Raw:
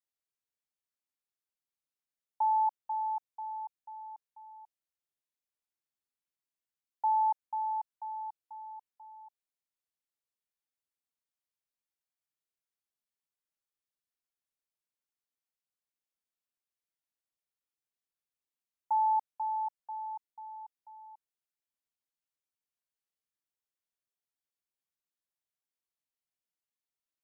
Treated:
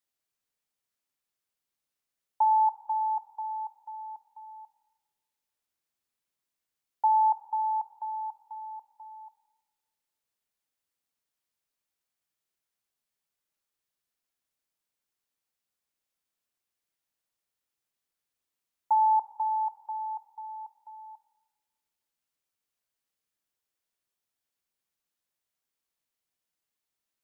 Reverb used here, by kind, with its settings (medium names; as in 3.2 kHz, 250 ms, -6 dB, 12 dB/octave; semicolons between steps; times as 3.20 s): Schroeder reverb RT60 1.4 s, combs from 27 ms, DRR 12.5 dB; trim +6 dB